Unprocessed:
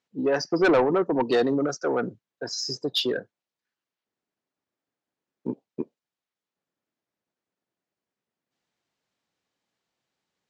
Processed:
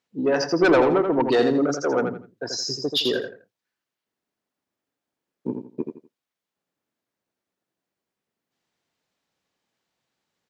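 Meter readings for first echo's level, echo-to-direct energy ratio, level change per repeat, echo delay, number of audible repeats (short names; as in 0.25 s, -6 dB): -6.0 dB, -5.5 dB, -11.5 dB, 83 ms, 3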